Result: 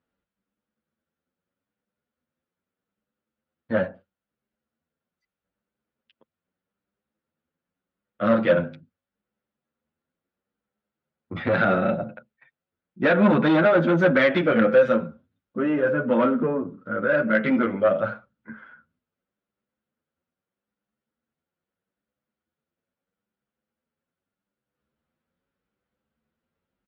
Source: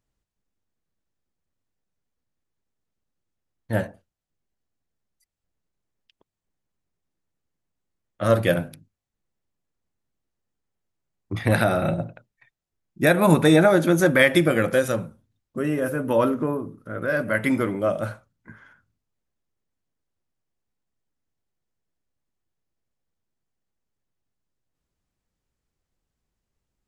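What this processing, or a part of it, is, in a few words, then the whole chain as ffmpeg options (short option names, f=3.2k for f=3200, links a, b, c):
barber-pole flanger into a guitar amplifier: -filter_complex "[0:a]asplit=2[a][b];[b]adelay=8.9,afreqshift=0.79[c];[a][c]amix=inputs=2:normalize=1,asoftclip=type=tanh:threshold=-19.5dB,highpass=84,equalizer=f=110:t=q:w=4:g=-8,equalizer=f=220:t=q:w=4:g=8,equalizer=f=520:t=q:w=4:g=7,equalizer=f=1.4k:t=q:w=4:g=8,lowpass=f=3.6k:w=0.5412,lowpass=f=3.6k:w=1.3066,volume=3dB"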